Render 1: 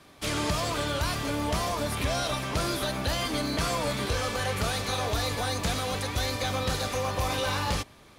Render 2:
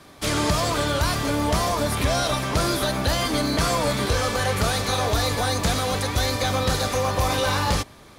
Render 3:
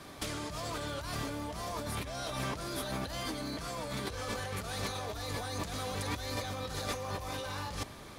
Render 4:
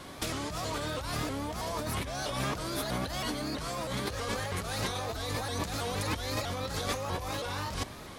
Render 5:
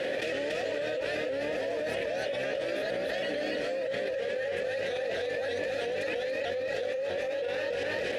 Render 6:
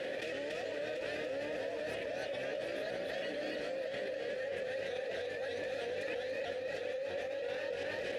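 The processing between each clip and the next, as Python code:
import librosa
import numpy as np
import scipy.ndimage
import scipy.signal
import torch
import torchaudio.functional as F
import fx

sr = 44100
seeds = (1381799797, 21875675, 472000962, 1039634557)

y1 = fx.peak_eq(x, sr, hz=2700.0, db=-3.5, octaves=0.64)
y1 = y1 * librosa.db_to_amplitude(6.5)
y2 = fx.over_compress(y1, sr, threshold_db=-30.0, ratio=-1.0)
y2 = y2 * librosa.db_to_amplitude(-8.0)
y3 = fx.vibrato_shape(y2, sr, shape='saw_up', rate_hz=3.1, depth_cents=160.0)
y3 = y3 * librosa.db_to_amplitude(3.5)
y4 = fx.vowel_filter(y3, sr, vowel='e')
y4 = y4 + 10.0 ** (-4.5 / 20.0) * np.pad(y4, (int(284 * sr / 1000.0), 0))[:len(y4)]
y4 = fx.env_flatten(y4, sr, amount_pct=100)
y4 = y4 * librosa.db_to_amplitude(6.0)
y5 = y4 + 10.0 ** (-8.0 / 20.0) * np.pad(y4, (int(736 * sr / 1000.0), 0))[:len(y4)]
y5 = y5 * librosa.db_to_amplitude(-7.5)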